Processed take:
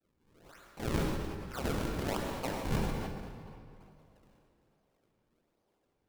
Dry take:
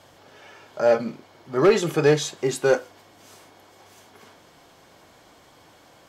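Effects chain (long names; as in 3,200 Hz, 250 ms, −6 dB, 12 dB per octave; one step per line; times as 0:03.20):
sub-harmonics by changed cycles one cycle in 3, inverted
downward expander −42 dBFS
parametric band 390 Hz −7.5 dB 0.79 octaves
reversed playback
downward compressor, threshold −23 dBFS, peak gain reduction 10 dB
reversed playback
band-pass filter sweep 1,400 Hz → 410 Hz, 0:01.72–0:04.31
sample-and-hold swept by an LFO 39×, swing 160% 1.2 Hz
on a send at −2 dB: convolution reverb RT60 2.8 s, pre-delay 83 ms
on the sum: level that may fall only so fast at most 29 dB per second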